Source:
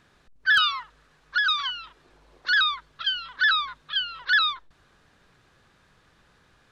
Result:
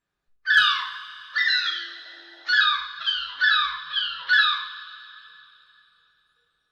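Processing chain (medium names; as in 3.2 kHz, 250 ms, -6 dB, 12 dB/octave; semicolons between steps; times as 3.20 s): 1.36–2.48 s: frequency shift +290 Hz; spectral noise reduction 23 dB; two-slope reverb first 0.53 s, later 3.1 s, from -18 dB, DRR -3.5 dB; trim -3 dB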